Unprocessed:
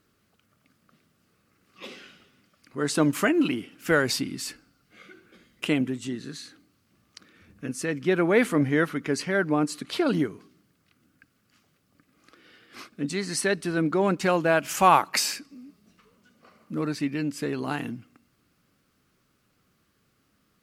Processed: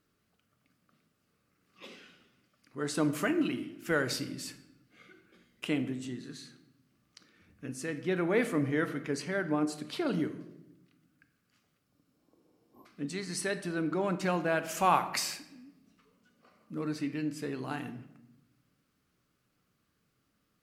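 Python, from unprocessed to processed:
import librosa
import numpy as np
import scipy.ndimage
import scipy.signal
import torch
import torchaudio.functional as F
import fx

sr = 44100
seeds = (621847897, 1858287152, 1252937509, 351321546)

y = fx.room_shoebox(x, sr, seeds[0], volume_m3=350.0, walls='mixed', distance_m=0.41)
y = fx.spec_repair(y, sr, seeds[1], start_s=11.93, length_s=0.9, low_hz=1100.0, high_hz=12000.0, source='before')
y = F.gain(torch.from_numpy(y), -8.0).numpy()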